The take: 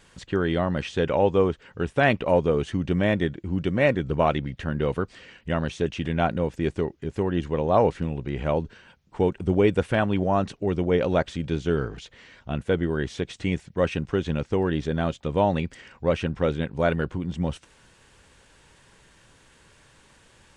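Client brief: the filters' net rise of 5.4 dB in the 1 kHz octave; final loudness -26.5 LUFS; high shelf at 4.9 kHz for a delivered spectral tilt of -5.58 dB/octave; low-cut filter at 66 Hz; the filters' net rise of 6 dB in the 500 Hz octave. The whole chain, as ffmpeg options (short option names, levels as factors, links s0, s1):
-af "highpass=66,equalizer=f=500:t=o:g=6,equalizer=f=1000:t=o:g=4.5,highshelf=f=4900:g=8,volume=0.531"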